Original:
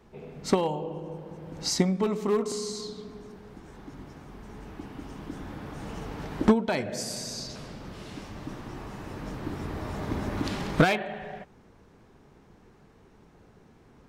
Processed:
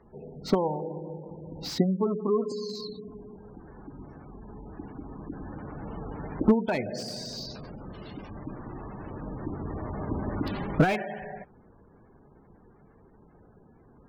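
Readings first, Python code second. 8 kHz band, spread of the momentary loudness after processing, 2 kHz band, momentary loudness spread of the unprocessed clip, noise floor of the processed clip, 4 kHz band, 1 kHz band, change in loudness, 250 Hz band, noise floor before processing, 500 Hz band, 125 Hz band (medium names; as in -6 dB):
-11.0 dB, 21 LU, -3.5 dB, 21 LU, -57 dBFS, -4.0 dB, -1.5 dB, -1.0 dB, 0.0 dB, -57 dBFS, -0.5 dB, 0.0 dB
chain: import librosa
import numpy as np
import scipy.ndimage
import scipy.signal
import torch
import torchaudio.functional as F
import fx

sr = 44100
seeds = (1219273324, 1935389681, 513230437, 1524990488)

y = fx.spec_gate(x, sr, threshold_db=-20, keep='strong')
y = fx.high_shelf_res(y, sr, hz=5700.0, db=-8.0, q=1.5)
y = fx.slew_limit(y, sr, full_power_hz=86.0)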